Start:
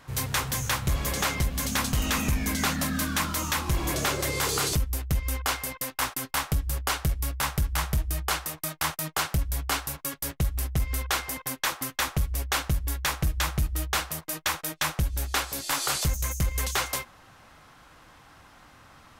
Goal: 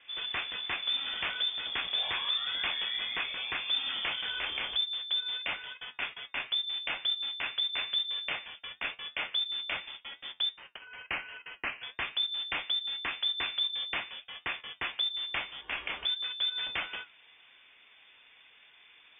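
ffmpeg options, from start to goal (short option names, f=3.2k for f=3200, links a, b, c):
-filter_complex "[0:a]asettb=1/sr,asplit=3[a][b][c];[a]atrim=end=10.484[d];[b]atrim=start=10.48:end=11.83,asetpts=PTS-STARTPTS,afade=t=in:d=0.004:c=qsin,afade=t=out:st=1.346:d=0.004:c=qsin,highpass=f=520:w=0.5412,highpass=f=520:w=1.3066[e];[c]atrim=start=11.826[f];[d][e]acrossfade=d=0.004:c1=hsin:c2=qsin[g];[g][f]acrossfade=d=0.004:c1=qsin:c2=hsin,flanger=delay=8:depth=4.6:regen=73:speed=0.93:shape=triangular,lowpass=f=3.1k:t=q:w=0.5098,lowpass=f=3.1k:t=q:w=0.6013,lowpass=f=3.1k:t=q:w=0.9,lowpass=f=3.1k:t=q:w=2.563,afreqshift=-3600,volume=-1dB"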